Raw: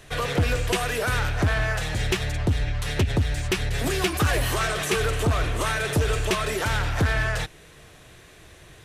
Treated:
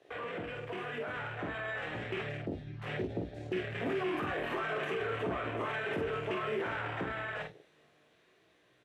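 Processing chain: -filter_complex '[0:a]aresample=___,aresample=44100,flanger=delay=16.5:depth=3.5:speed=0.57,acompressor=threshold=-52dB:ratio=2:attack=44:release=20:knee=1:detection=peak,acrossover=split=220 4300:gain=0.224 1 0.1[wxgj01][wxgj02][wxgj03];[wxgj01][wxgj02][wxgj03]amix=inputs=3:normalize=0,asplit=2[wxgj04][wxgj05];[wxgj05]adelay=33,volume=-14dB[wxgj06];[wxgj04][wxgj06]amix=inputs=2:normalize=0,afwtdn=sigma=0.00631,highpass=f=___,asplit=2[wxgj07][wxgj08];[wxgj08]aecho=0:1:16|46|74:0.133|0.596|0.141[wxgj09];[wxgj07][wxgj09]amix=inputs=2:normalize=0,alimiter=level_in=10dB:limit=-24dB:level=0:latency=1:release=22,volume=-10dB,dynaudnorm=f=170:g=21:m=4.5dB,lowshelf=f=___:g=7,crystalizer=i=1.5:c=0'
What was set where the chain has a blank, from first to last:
32000, 120, 480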